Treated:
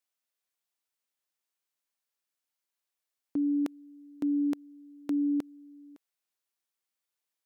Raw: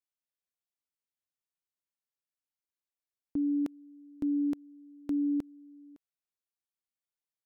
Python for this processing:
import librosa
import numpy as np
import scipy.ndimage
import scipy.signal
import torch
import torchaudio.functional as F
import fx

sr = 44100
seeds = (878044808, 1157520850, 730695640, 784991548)

y = fx.highpass(x, sr, hz=430.0, slope=6)
y = y * 10.0 ** (6.5 / 20.0)